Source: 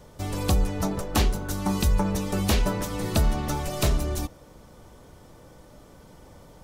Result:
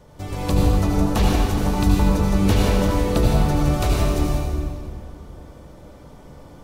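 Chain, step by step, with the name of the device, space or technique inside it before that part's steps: swimming-pool hall (reverb RT60 2.3 s, pre-delay 70 ms, DRR -4 dB; high shelf 4000 Hz -6 dB)

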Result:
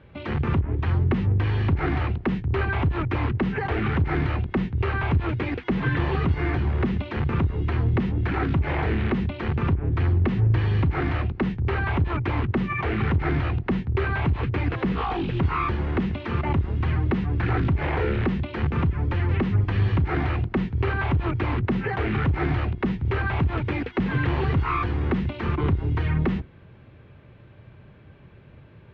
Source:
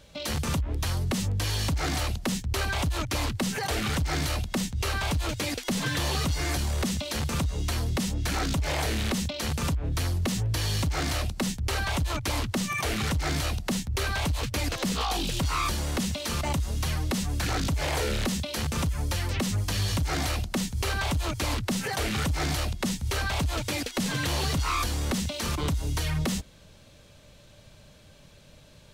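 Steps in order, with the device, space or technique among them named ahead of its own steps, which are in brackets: sub-octave bass pedal (octaver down 2 oct, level -3 dB; speaker cabinet 63–2300 Hz, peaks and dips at 86 Hz +4 dB, 120 Hz +7 dB, 370 Hz +7 dB, 590 Hz -7 dB); gain +3.5 dB

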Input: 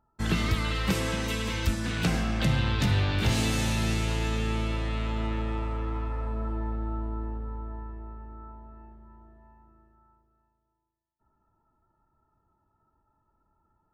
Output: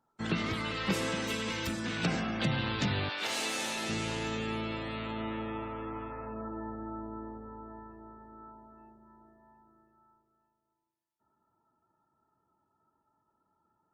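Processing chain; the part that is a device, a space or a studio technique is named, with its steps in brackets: 3.08–3.88 HPF 690 Hz -> 310 Hz 12 dB/oct; noise-suppressed video call (HPF 160 Hz 12 dB/oct; spectral gate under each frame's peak -30 dB strong; gain -2 dB; Opus 32 kbps 48000 Hz)

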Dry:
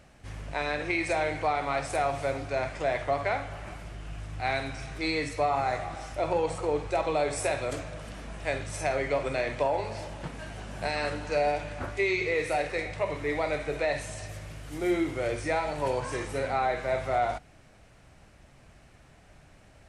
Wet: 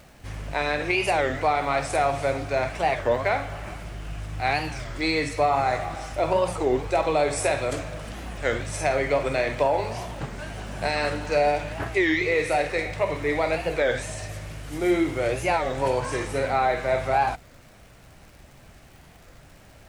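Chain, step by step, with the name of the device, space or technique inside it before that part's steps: warped LP (record warp 33 1/3 rpm, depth 250 cents; crackle 140/s -48 dBFS; pink noise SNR 35 dB); gain +5 dB

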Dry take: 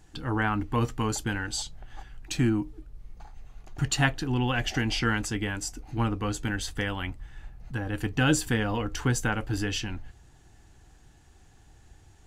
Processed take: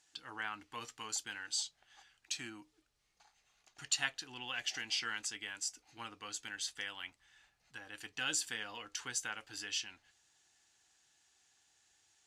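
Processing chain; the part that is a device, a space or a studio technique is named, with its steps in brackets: piezo pickup straight into a mixer (LPF 5800 Hz 12 dB/oct; differentiator); gain +2 dB

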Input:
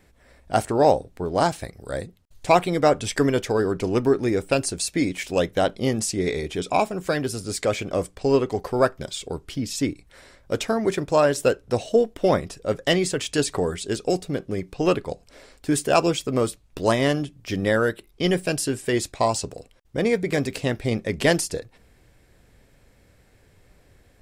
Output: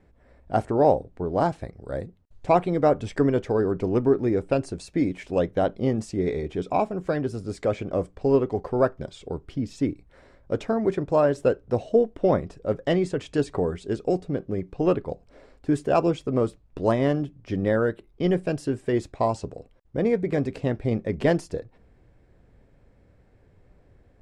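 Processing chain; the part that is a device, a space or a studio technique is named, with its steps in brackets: through cloth (LPF 8800 Hz 12 dB/oct; high shelf 2000 Hz -17.5 dB)

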